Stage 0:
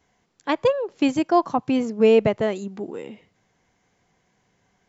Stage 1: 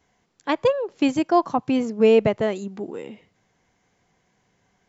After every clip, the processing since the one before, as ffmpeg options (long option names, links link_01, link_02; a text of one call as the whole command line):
ffmpeg -i in.wav -af anull out.wav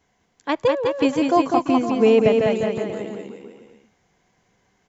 ffmpeg -i in.wav -af "aecho=1:1:200|370|514.5|637.3|741.7:0.631|0.398|0.251|0.158|0.1" out.wav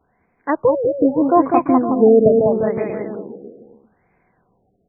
ffmpeg -i in.wav -af "bandreject=frequency=50:width_type=h:width=6,bandreject=frequency=100:width_type=h:width=6,bandreject=frequency=150:width_type=h:width=6,bandreject=frequency=200:width_type=h:width=6,afftfilt=real='re*lt(b*sr/1024,720*pow(2600/720,0.5+0.5*sin(2*PI*0.78*pts/sr)))':imag='im*lt(b*sr/1024,720*pow(2600/720,0.5+0.5*sin(2*PI*0.78*pts/sr)))':win_size=1024:overlap=0.75,volume=4dB" out.wav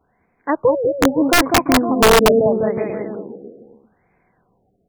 ffmpeg -i in.wav -af "aeval=exprs='(mod(1.78*val(0)+1,2)-1)/1.78':channel_layout=same" out.wav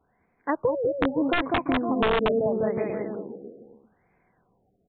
ffmpeg -i in.wav -af "acompressor=threshold=-15dB:ratio=6,aresample=8000,aresample=44100,volume=-5dB" out.wav